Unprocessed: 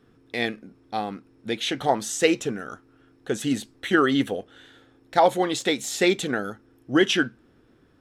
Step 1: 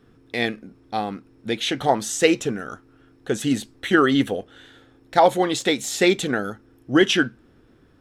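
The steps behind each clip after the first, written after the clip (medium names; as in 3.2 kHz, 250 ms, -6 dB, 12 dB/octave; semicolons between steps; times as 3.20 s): bass shelf 88 Hz +5.5 dB; trim +2.5 dB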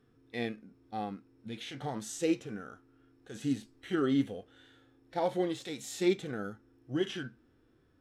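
harmonic-percussive split percussive -17 dB; trim -8 dB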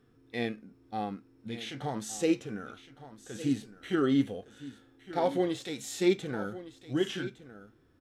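delay 1162 ms -15 dB; trim +2.5 dB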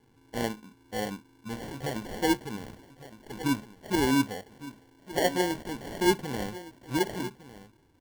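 sample-and-hold 35×; trim +1.5 dB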